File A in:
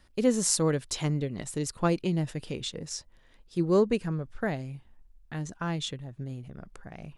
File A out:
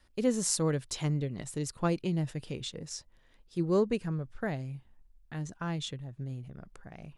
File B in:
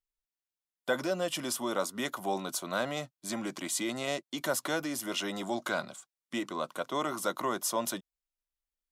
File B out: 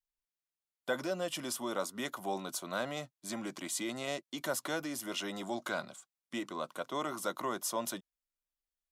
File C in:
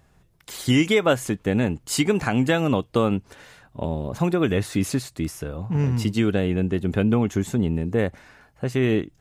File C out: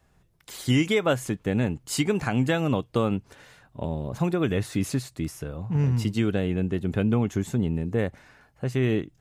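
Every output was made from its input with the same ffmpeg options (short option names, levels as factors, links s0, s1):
-af "adynamicequalizer=threshold=0.00891:dfrequency=130:dqfactor=2.4:tfrequency=130:tqfactor=2.4:attack=5:release=100:ratio=0.375:range=2:mode=boostabove:tftype=bell,volume=0.631"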